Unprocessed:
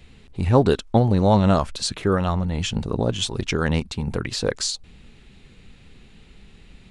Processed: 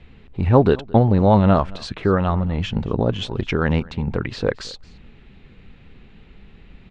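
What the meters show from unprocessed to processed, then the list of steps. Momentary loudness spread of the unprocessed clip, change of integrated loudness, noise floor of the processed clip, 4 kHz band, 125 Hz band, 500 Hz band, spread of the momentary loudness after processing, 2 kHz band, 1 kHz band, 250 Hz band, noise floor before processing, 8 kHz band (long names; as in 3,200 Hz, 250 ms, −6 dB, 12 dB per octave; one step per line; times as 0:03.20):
9 LU, +2.5 dB, −48 dBFS, −5.0 dB, +2.5 dB, +2.5 dB, 11 LU, +1.5 dB, +2.5 dB, +2.5 dB, −50 dBFS, −15.0 dB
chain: low-pass filter 2,600 Hz 12 dB per octave
on a send: single-tap delay 222 ms −23.5 dB
on the sum: level +2.5 dB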